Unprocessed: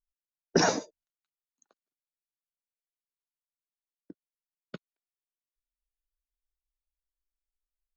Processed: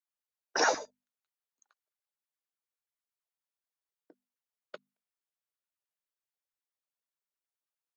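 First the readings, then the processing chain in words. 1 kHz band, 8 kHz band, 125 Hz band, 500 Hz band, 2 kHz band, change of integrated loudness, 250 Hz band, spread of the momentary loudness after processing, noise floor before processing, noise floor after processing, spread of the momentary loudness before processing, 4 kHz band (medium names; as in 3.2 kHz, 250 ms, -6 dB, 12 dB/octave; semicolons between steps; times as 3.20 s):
+0.5 dB, no reading, -26.0 dB, -4.5 dB, +1.5 dB, -2.5 dB, -13.5 dB, 9 LU, under -85 dBFS, under -85 dBFS, 7 LU, -2.5 dB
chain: LFO high-pass saw down 9.4 Hz 340–1700 Hz; hum notches 50/100/150/200/250 Hz; trim -2.5 dB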